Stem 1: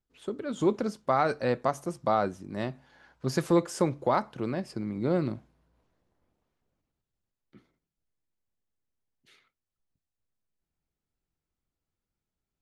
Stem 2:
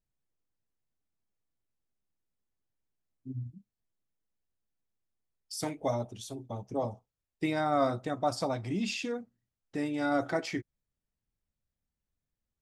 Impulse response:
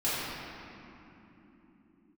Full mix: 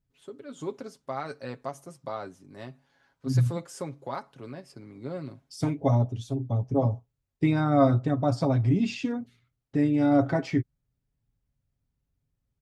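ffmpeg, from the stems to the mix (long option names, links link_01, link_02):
-filter_complex "[0:a]volume=-10dB[link_01];[1:a]aemphasis=mode=reproduction:type=riaa,volume=1dB[link_02];[link_01][link_02]amix=inputs=2:normalize=0,highpass=56,highshelf=frequency=4700:gain=5.5,aecho=1:1:7.3:0.55"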